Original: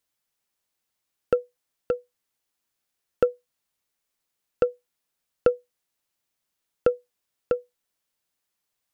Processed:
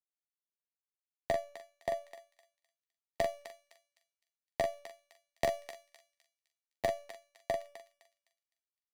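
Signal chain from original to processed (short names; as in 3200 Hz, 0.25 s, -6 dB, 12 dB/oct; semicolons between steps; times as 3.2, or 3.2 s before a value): switching dead time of 0.092 ms; LPF 3300 Hz 6 dB/oct; high shelf 2000 Hz +9.5 dB; compressor 8:1, threshold -24 dBFS, peak gain reduction 10.5 dB; resonator 420 Hz, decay 0.7 s, mix 80%; pitch shift +5.5 st; doubler 43 ms -7.5 dB; thinning echo 0.256 s, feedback 54%, high-pass 1100 Hz, level -7 dB; three-band expander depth 70%; gain +4.5 dB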